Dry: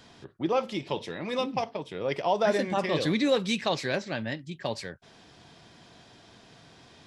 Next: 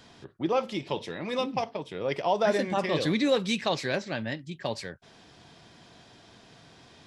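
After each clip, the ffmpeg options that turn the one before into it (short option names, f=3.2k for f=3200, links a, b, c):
-af anull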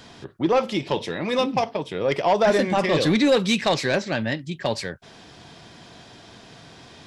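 -af "aeval=exprs='0.251*sin(PI/2*1.58*val(0)/0.251)':c=same"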